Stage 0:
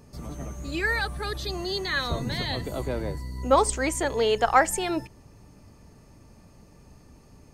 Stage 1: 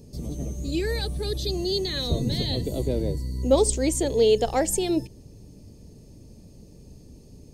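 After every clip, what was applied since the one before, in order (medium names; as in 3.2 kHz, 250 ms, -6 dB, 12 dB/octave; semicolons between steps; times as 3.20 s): FFT filter 470 Hz 0 dB, 1.3 kHz -23 dB, 3.7 kHz -2 dB; trim +5 dB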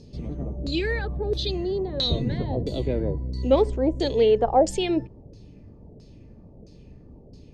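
LFO low-pass saw down 1.5 Hz 550–4900 Hz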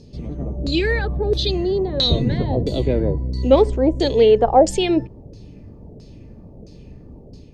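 level rider gain up to 4 dB; trim +2.5 dB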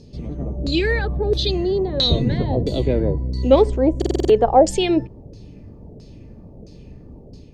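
buffer glitch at 3.97 s, samples 2048, times 6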